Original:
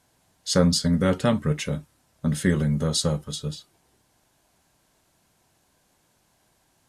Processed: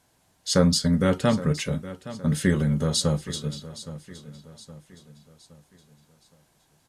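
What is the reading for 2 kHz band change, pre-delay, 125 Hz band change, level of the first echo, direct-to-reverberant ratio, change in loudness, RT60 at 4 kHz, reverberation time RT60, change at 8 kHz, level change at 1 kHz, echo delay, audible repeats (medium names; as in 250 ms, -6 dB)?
0.0 dB, no reverb, +0.5 dB, -15.5 dB, no reverb, 0.0 dB, no reverb, no reverb, 0.0 dB, 0.0 dB, 817 ms, 3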